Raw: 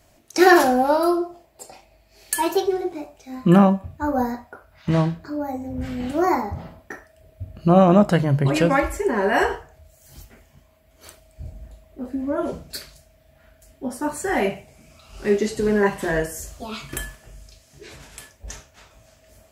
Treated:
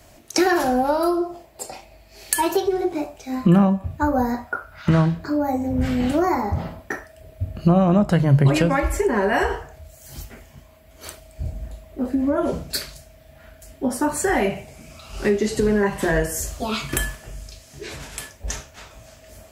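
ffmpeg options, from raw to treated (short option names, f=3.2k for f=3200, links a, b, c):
-filter_complex "[0:a]asettb=1/sr,asplit=3[a][b][c];[a]atrim=end=4.474[d];[b]atrim=start=4.47:end=5.06,asetpts=PTS-STARTPTS,afade=t=in:d=0.004:c=qsin,afade=t=out:st=0.586:d=0.004:c=qsin,equalizer=f=1.4k:w=4.2:g=11[e];[c]atrim=start=5.056[f];[d][e]acrossfade=d=0.004:c1=hsin:c2=qsin[g];[g][f]acrossfade=d=0.004:c1=qsin:c2=hsin,acrossover=split=130[h][i];[i]acompressor=threshold=-25dB:ratio=5[j];[h][j]amix=inputs=2:normalize=0,volume=7.5dB"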